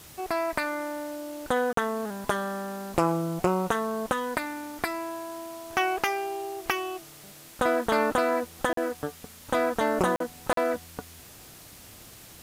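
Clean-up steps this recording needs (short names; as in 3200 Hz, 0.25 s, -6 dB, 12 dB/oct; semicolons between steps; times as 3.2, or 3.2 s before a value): clip repair -11 dBFS; interpolate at 1.73/8.73/10.16/10.53, 43 ms; noise print and reduce 25 dB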